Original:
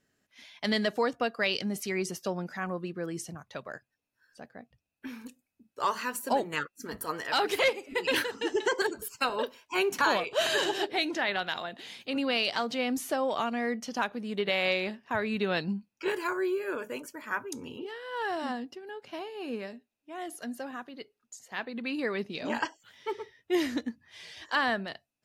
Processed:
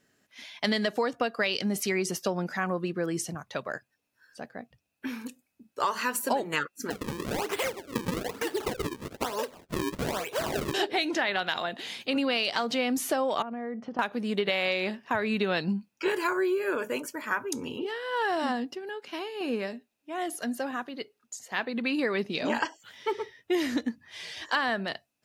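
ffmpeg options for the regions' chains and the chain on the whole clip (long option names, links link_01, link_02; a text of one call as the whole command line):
ffmpeg -i in.wav -filter_complex "[0:a]asettb=1/sr,asplit=3[link_01][link_02][link_03];[link_01]atrim=end=6.904[link_04];[link_02]atrim=start=6.9:end=10.74,asetpts=PTS-STARTPTS,afade=type=in:duration=0.004:curve=qsin,afade=type=out:start_time=3.836:duration=0.004:curve=qsin,acrossover=split=140|310[link_05][link_06][link_07];[link_05]acompressor=threshold=-57dB:ratio=4[link_08];[link_06]acompressor=threshold=-55dB:ratio=4[link_09];[link_07]acompressor=threshold=-35dB:ratio=4[link_10];[link_08][link_09][link_10]amix=inputs=3:normalize=0,acrusher=samples=36:mix=1:aa=0.000001:lfo=1:lforange=57.6:lforate=1.1[link_11];[link_03]atrim=start=10.736[link_12];[link_04][link_11]acrossfade=duration=0.004:curve1=hsin:curve2=qsin[link_13];[link_13][link_12]acrossfade=duration=0.004:curve1=qsin:curve2=hsin,asettb=1/sr,asplit=3[link_14][link_15][link_16];[link_14]atrim=end=13.424[link_17];[link_15]atrim=start=13.42:end=13.99,asetpts=PTS-STARTPTS,afade=type=in:duration=0.004:curve=qsin,afade=type=out:start_time=0.566:duration=0.004:curve=qsin,lowpass=1200,acompressor=threshold=-38dB:ratio=5:attack=3.2:release=140:knee=1:detection=peak[link_18];[link_16]atrim=start=13.986[link_19];[link_17][link_18]acrossfade=duration=0.004:curve1=hsin:curve2=qsin[link_20];[link_20][link_19]acrossfade=duration=0.004:curve1=qsin:curve2=hsin,asettb=1/sr,asplit=3[link_21][link_22][link_23];[link_21]atrim=end=18.894[link_24];[link_22]atrim=start=18.89:end=19.41,asetpts=PTS-STARTPTS,afade=type=in:duration=0.004:curve=qsin,afade=type=out:start_time=0.516:duration=0.004:curve=qsin,highpass=250,equalizer=frequency=650:width=1.9:gain=-8[link_25];[link_23]atrim=start=19.406[link_26];[link_24][link_25]acrossfade=duration=0.004:curve1=hsin:curve2=qsin[link_27];[link_27][link_26]acrossfade=duration=0.004:curve1=qsin:curve2=hsin,lowshelf=frequency=67:gain=-10.5,acompressor=threshold=-30dB:ratio=6,volume=6.5dB" out.wav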